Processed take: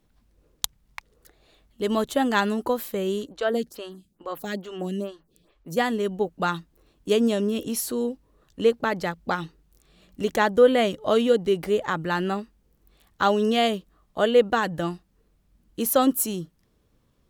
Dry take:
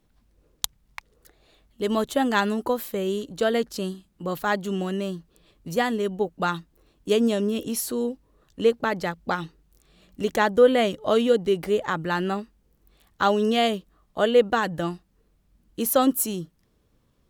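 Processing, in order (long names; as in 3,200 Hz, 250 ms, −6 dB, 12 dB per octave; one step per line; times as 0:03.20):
0:03.27–0:05.77: phaser with staggered stages 2.3 Hz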